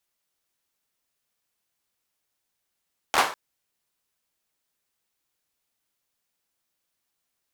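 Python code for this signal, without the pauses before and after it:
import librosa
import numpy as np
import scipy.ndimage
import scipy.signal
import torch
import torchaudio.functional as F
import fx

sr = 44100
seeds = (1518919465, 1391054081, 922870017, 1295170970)

y = fx.drum_clap(sr, seeds[0], length_s=0.2, bursts=4, spacing_ms=13, hz=940.0, decay_s=0.39)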